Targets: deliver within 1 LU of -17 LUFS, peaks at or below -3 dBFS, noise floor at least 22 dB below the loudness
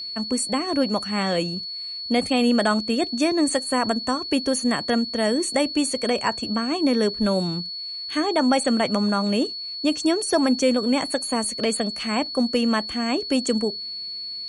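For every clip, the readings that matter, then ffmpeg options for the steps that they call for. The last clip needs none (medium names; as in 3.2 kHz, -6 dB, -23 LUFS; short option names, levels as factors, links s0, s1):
steady tone 4.4 kHz; tone level -30 dBFS; loudness -23.0 LUFS; peak level -7.5 dBFS; loudness target -17.0 LUFS
-> -af "bandreject=f=4400:w=30"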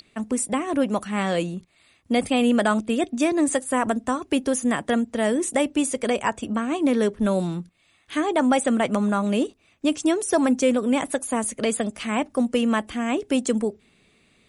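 steady tone not found; loudness -23.5 LUFS; peak level -7.5 dBFS; loudness target -17.0 LUFS
-> -af "volume=2.11,alimiter=limit=0.708:level=0:latency=1"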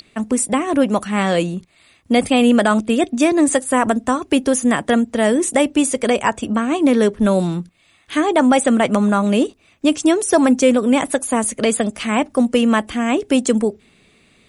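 loudness -17.0 LUFS; peak level -3.0 dBFS; noise floor -55 dBFS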